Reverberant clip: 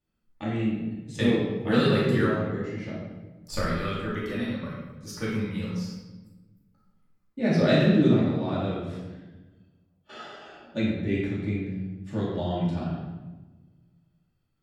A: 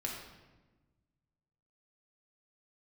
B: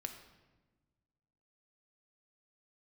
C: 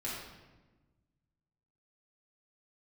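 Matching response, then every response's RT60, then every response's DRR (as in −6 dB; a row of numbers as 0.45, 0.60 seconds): C; 1.2, 1.3, 1.2 seconds; −2.0, 5.5, −7.5 decibels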